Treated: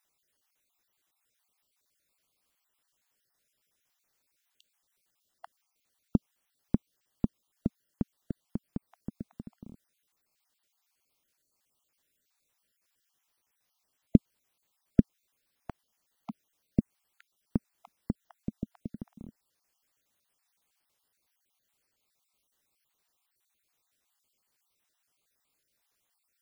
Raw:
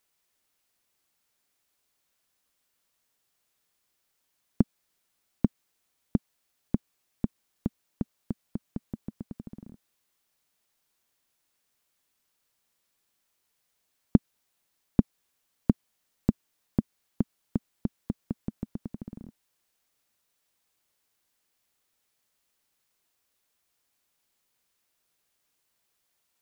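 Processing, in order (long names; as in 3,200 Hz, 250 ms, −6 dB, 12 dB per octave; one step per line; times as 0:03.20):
time-frequency cells dropped at random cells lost 40%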